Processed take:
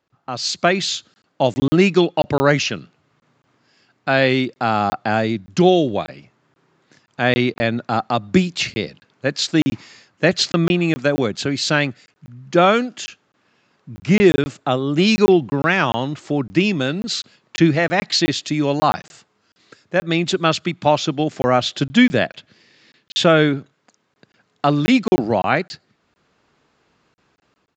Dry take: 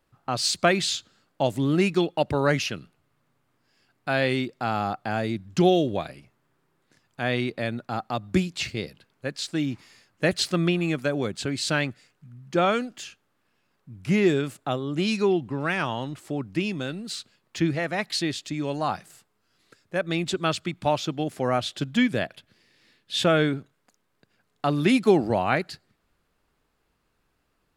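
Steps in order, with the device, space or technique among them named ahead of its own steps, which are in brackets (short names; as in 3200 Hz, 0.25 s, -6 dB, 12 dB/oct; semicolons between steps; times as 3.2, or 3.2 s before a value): call with lost packets (HPF 110 Hz 12 dB/oct; downsampling 16000 Hz; AGC gain up to 11.5 dB; packet loss packets of 20 ms random)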